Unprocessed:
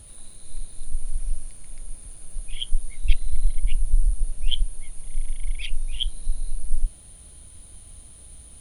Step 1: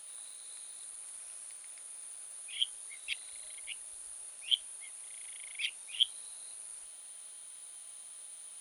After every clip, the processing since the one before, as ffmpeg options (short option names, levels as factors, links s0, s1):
-af "highpass=890"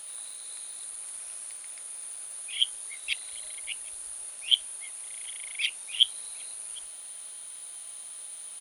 -filter_complex "[0:a]asplit=2[s0][s1];[s1]adelay=758,volume=0.1,highshelf=f=4000:g=-17.1[s2];[s0][s2]amix=inputs=2:normalize=0,volume=2.24"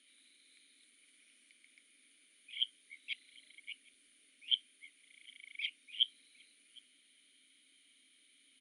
-filter_complex "[0:a]asplit=3[s0][s1][s2];[s0]bandpass=f=270:t=q:w=8,volume=1[s3];[s1]bandpass=f=2290:t=q:w=8,volume=0.501[s4];[s2]bandpass=f=3010:t=q:w=8,volume=0.355[s5];[s3][s4][s5]amix=inputs=3:normalize=0"